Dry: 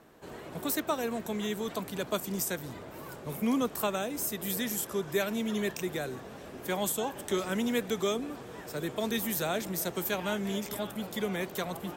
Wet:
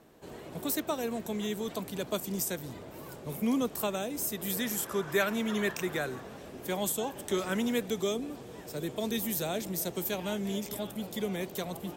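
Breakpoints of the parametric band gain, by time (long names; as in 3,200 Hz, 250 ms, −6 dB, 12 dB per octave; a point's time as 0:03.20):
parametric band 1,400 Hz 1.4 octaves
0:04.20 −5 dB
0:05.03 +6.5 dB
0:05.98 +6.5 dB
0:06.53 −4.5 dB
0:07.24 −4.5 dB
0:07.52 +2 dB
0:07.95 −7.5 dB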